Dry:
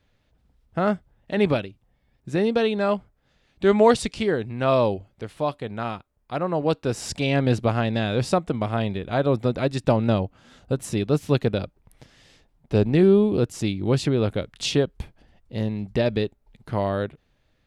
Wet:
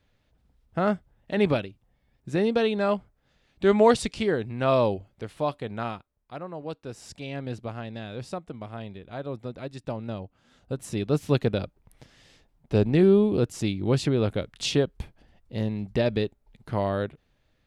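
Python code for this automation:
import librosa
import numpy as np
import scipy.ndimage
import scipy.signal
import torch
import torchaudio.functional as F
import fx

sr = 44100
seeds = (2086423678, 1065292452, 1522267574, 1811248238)

y = fx.gain(x, sr, db=fx.line((5.83, -2.0), (6.53, -13.0), (10.16, -13.0), (11.21, -2.0)))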